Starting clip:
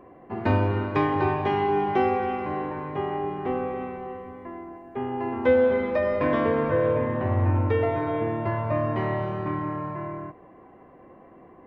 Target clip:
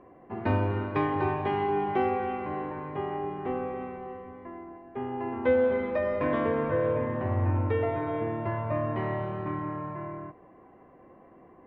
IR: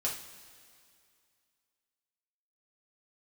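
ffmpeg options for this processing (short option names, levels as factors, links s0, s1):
-af "lowpass=3600,volume=0.631"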